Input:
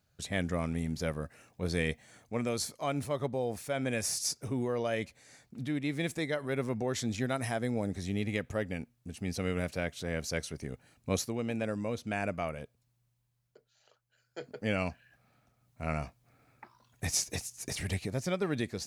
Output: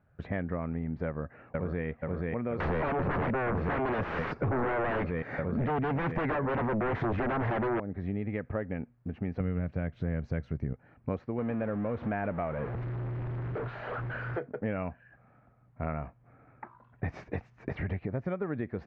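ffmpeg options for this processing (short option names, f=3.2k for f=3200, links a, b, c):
-filter_complex "[0:a]asplit=2[a][b];[b]afade=t=in:st=1.06:d=0.01,afade=t=out:st=1.86:d=0.01,aecho=0:1:480|960|1440|1920|2400|2880|3360|3840|4320|4800|5280|5760:0.749894|0.562421|0.421815|0.316362|0.237271|0.177953|0.133465|0.100099|0.0750741|0.0563056|0.0422292|0.0316719[c];[a][c]amix=inputs=2:normalize=0,asettb=1/sr,asplit=3[d][e][f];[d]atrim=end=2.604[g];[e]atrim=start=2.6:end=7.8,asetpts=PTS-STARTPTS,afade=t=in:d=0.004:c=qsin,afade=t=out:st=5.196:d=0.004:c=qsin,aeval=exprs='0.119*sin(PI/2*7.08*val(0)/0.119)':c=same[h];[f]atrim=start=7.796[i];[g][h]acrossfade=d=0.004:c1=hsin:c2=qsin[j];[j][i]acrossfade=d=0.004:c1=qsin:c2=hsin,asettb=1/sr,asplit=3[k][l][m];[k]atrim=end=9.404[n];[l]atrim=start=9.4:end=10.73,asetpts=PTS-STARTPTS,afade=t=in:d=0.004:c=qsin,afade=t=out:st=1.326:d=0.004:c=qsin,bass=f=250:g=12,treble=f=4k:g=13[o];[m]atrim=start=10.726[p];[n][o]acrossfade=d=0.004:c1=hsin:c2=qsin[q];[q][p]acrossfade=d=0.004:c1=qsin:c2=hsin,asettb=1/sr,asplit=3[r][s][t];[r]atrim=end=11.384[u];[s]atrim=start=11.38:end=14.39,asetpts=PTS-STARTPTS,afade=t=in:d=0.004:c=qsin,afade=t=out:st=3.006:d=0.004:c=qsin,aeval=exprs='val(0)+0.5*0.0178*sgn(val(0))':c=same[v];[t]atrim=start=14.386[w];[u][v]acrossfade=d=0.004:c1=hsin:c2=qsin[x];[x][w]acrossfade=d=0.004:c1=qsin:c2=hsin,lowpass=f=1.8k:w=0.5412,lowpass=f=1.8k:w=1.3066,acompressor=threshold=-37dB:ratio=6,volume=7.5dB"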